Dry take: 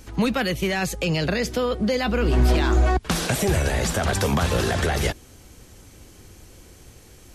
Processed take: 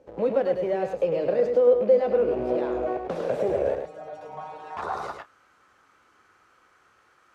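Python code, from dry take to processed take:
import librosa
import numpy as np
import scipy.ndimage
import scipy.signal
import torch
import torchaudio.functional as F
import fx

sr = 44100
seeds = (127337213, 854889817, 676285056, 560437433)

p1 = fx.rattle_buzz(x, sr, strikes_db=-24.0, level_db=-23.0)
p2 = fx.schmitt(p1, sr, flips_db=-34.0)
p3 = p1 + (p2 * 10.0 ** (-9.0 / 20.0))
p4 = fx.stiff_resonator(p3, sr, f0_hz=150.0, decay_s=0.31, stiffness=0.002, at=(3.75, 4.77))
p5 = fx.filter_sweep_bandpass(p4, sr, from_hz=530.0, to_hz=1300.0, start_s=3.87, end_s=5.26, q=4.6)
p6 = fx.doubler(p5, sr, ms=29.0, db=-13.5)
p7 = p6 + fx.echo_single(p6, sr, ms=105, db=-6.0, dry=0)
p8 = fx.spec_box(p7, sr, start_s=4.81, length_s=0.37, low_hz=1500.0, high_hz=3500.0, gain_db=-11)
y = p8 * 10.0 ** (5.0 / 20.0)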